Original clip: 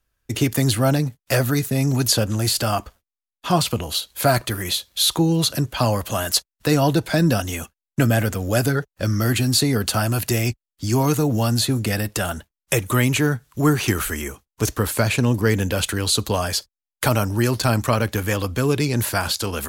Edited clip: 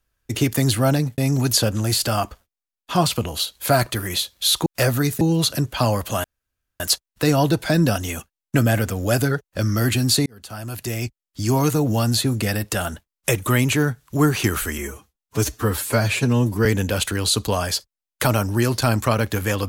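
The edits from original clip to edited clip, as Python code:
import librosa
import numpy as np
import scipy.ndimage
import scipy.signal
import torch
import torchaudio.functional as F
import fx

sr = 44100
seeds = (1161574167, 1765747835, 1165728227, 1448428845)

y = fx.edit(x, sr, fx.move(start_s=1.18, length_s=0.55, to_s=5.21),
    fx.insert_room_tone(at_s=6.24, length_s=0.56),
    fx.fade_in_span(start_s=9.7, length_s=1.28),
    fx.stretch_span(start_s=14.22, length_s=1.25, factor=1.5), tone=tone)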